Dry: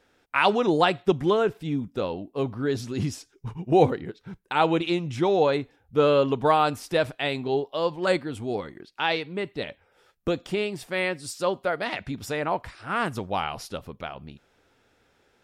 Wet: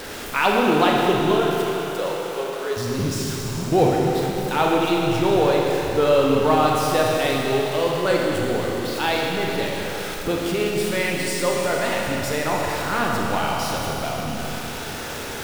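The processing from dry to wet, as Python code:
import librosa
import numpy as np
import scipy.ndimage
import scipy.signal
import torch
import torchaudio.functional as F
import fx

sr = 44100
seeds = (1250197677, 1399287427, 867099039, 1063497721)

y = x + 0.5 * 10.0 ** (-28.5 / 20.0) * np.sign(x)
y = fx.steep_highpass(y, sr, hz=400.0, slope=36, at=(1.31, 2.77))
y = fx.rev_schroeder(y, sr, rt60_s=3.6, comb_ms=26, drr_db=-2.0)
y = F.gain(torch.from_numpy(y), -1.0).numpy()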